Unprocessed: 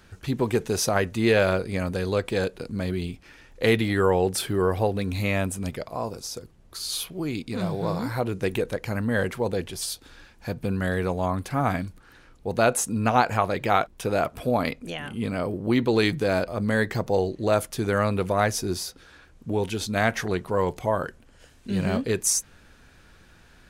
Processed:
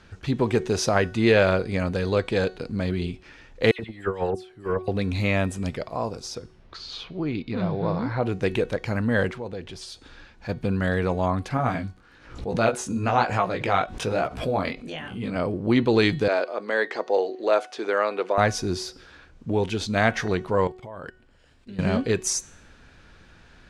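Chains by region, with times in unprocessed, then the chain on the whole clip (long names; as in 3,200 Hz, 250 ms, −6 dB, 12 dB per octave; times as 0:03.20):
0:03.71–0:04.88: noise gate −21 dBFS, range −24 dB + compressor whose output falls as the input rises −26 dBFS, ratio −0.5 + all-pass dispersion lows, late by 75 ms, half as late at 2,700 Hz
0:06.35–0:08.23: high-frequency loss of the air 200 metres + one half of a high-frequency compander encoder only
0:09.31–0:10.49: high-shelf EQ 11,000 Hz −10.5 dB + downward compressor 2 to 1, threshold −39 dBFS
0:11.57–0:15.36: chorus effect 1.1 Hz, delay 15.5 ms, depth 6.7 ms + background raised ahead of every attack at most 95 dB per second
0:16.28–0:18.38: high-pass filter 350 Hz 24 dB per octave + high-frequency loss of the air 72 metres
0:20.67–0:21.79: notch filter 6,200 Hz, Q 7.4 + output level in coarse steps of 20 dB
whole clip: low-pass filter 5,900 Hz 12 dB per octave; hum removal 370.6 Hz, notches 35; level +2 dB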